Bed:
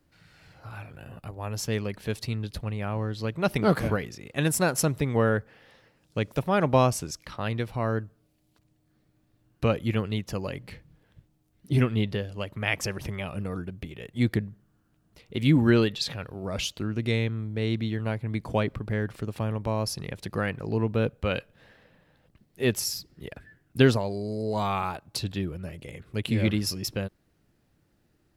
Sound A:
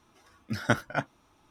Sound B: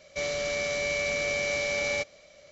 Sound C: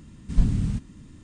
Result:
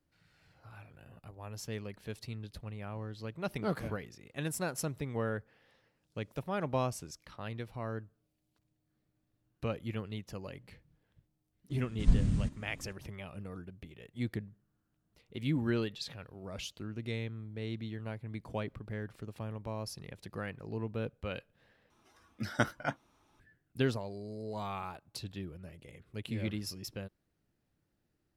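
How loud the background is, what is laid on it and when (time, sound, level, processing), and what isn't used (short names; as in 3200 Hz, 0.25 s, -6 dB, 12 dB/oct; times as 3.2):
bed -11.5 dB
11.7 add C -5 dB
21.9 replace with A -5 dB
not used: B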